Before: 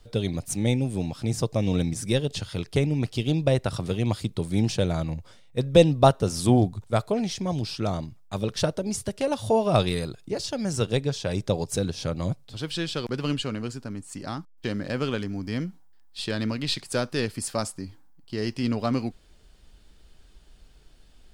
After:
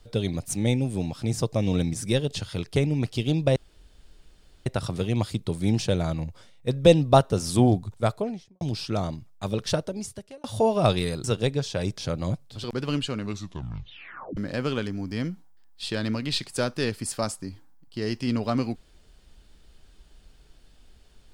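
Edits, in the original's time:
3.56 insert room tone 1.10 s
6.92–7.51 studio fade out
8.58–9.34 fade out
10.14–10.74 cut
11.48–11.96 cut
12.62–13 cut
13.53 tape stop 1.20 s

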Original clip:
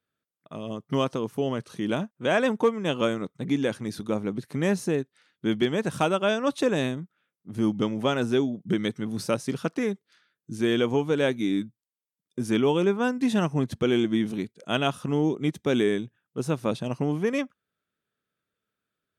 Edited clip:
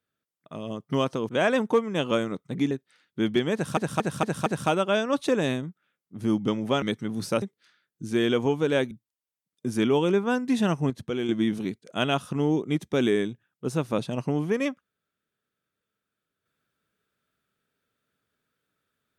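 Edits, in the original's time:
1.29–2.19 cut
3.61–4.97 cut
5.8 stutter 0.23 s, 5 plays
8.16–8.79 cut
9.39–9.9 cut
11.39–11.64 cut
13.63–14.02 gain -6 dB

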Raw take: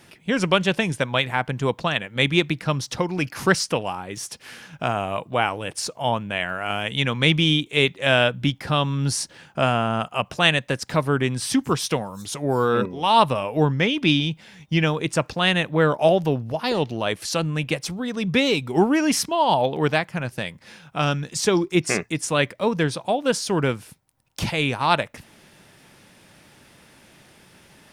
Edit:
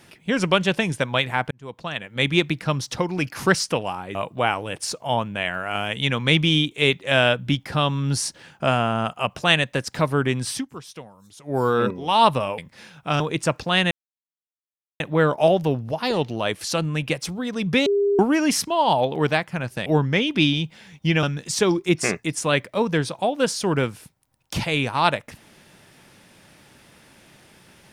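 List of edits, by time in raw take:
1.51–2.35 fade in
4.15–5.1 cut
11.45–12.53 dip -15.5 dB, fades 0.15 s
13.53–14.9 swap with 20.47–21.09
15.61 insert silence 1.09 s
18.47–18.8 bleep 403 Hz -16.5 dBFS

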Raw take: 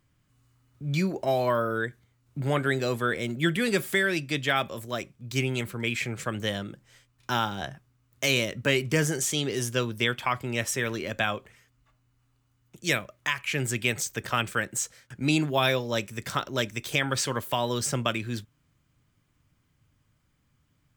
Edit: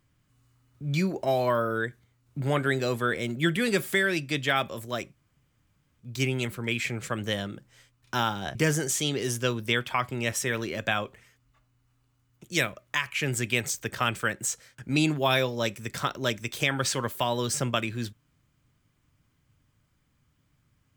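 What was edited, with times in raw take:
5.15 insert room tone 0.84 s
7.71–8.87 cut

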